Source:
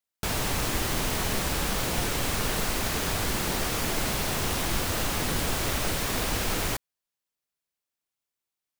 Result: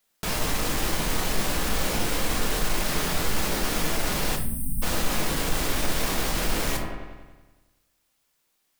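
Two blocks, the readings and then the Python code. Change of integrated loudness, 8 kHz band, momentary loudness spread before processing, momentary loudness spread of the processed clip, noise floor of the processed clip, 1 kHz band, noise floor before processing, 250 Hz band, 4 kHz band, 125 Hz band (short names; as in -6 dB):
+0.5 dB, +0.5 dB, 0 LU, 3 LU, -72 dBFS, +1.0 dB, under -85 dBFS, +1.5 dB, +0.5 dB, -0.5 dB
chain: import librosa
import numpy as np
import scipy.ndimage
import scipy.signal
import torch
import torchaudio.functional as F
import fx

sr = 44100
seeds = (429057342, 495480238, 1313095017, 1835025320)

p1 = fx.peak_eq(x, sr, hz=100.0, db=-9.0, octaves=0.52)
p2 = fx.echo_wet_lowpass(p1, sr, ms=94, feedback_pct=59, hz=1900.0, wet_db=-19)
p3 = fx.over_compress(p2, sr, threshold_db=-40.0, ratio=-1.0)
p4 = p2 + F.gain(torch.from_numpy(p3), 1.0).numpy()
p5 = 10.0 ** (-23.5 / 20.0) * np.tanh(p4 / 10.0 ** (-23.5 / 20.0))
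p6 = fx.spec_erase(p5, sr, start_s=4.36, length_s=0.46, low_hz=260.0, high_hz=8200.0)
y = fx.room_shoebox(p6, sr, seeds[0], volume_m3=91.0, walls='mixed', distance_m=0.58)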